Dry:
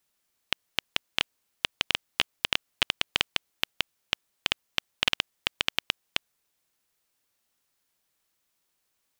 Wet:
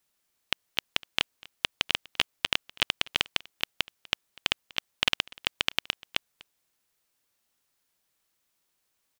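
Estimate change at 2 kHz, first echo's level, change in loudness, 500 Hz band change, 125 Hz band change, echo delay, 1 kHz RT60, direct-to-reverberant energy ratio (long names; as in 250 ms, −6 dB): 0.0 dB, −23.5 dB, 0.0 dB, 0.0 dB, 0.0 dB, 246 ms, no reverb audible, no reverb audible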